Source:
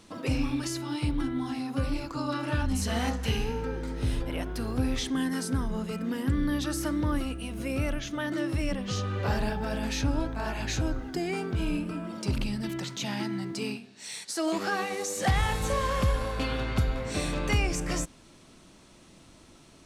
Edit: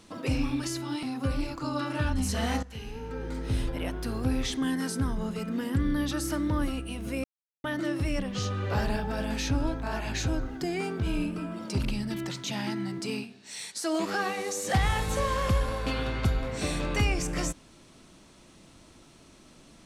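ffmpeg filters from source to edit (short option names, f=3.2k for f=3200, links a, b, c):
-filter_complex "[0:a]asplit=5[a][b][c][d][e];[a]atrim=end=1.032[f];[b]atrim=start=1.558:end=3.16,asetpts=PTS-STARTPTS,afade=t=out:st=1.598:d=0.004:c=hsin:silence=0.211349[g];[c]atrim=start=3.16:end=7.77,asetpts=PTS-STARTPTS,afade=t=in:d=0.69:c=qua:silence=0.211349,afade=t=out:st=4.606:d=0.004:c=hsin[h];[d]atrim=start=7.77:end=8.17,asetpts=PTS-STARTPTS,volume=0[i];[e]atrim=start=8.17,asetpts=PTS-STARTPTS,afade=t=in:d=0.004:c=hsin[j];[g][h][i][j]concat=n=4:v=0:a=1[k];[f][k]acrossfade=d=0.004:c1=hsin:c2=hsin"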